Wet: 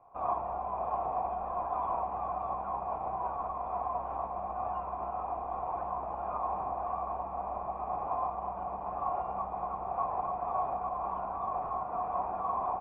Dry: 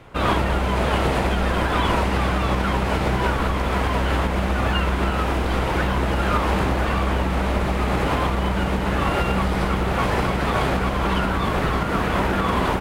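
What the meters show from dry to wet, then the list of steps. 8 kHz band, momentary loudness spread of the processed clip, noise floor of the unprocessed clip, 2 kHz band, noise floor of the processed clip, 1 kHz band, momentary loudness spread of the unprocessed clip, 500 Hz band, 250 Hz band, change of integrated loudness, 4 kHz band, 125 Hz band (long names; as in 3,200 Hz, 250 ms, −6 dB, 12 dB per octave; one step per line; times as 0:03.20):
below −40 dB, 4 LU, −23 dBFS, −32.0 dB, −39 dBFS, −7.5 dB, 2 LU, −13.5 dB, −26.5 dB, −13.0 dB, below −40 dB, −28.0 dB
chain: formant resonators in series a
notch filter 2,200 Hz, Q 27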